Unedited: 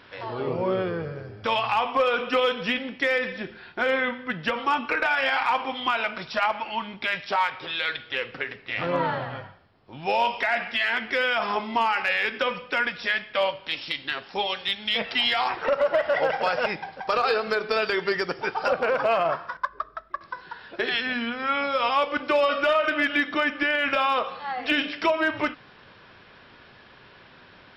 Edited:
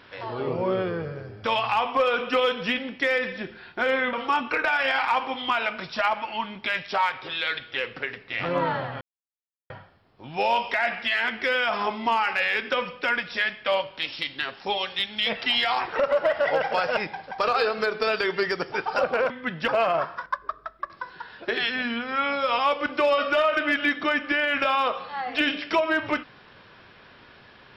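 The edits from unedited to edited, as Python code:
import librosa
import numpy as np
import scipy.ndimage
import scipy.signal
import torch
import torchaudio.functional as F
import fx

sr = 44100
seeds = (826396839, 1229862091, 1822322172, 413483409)

y = fx.edit(x, sr, fx.move(start_s=4.13, length_s=0.38, to_s=18.99),
    fx.insert_silence(at_s=9.39, length_s=0.69), tone=tone)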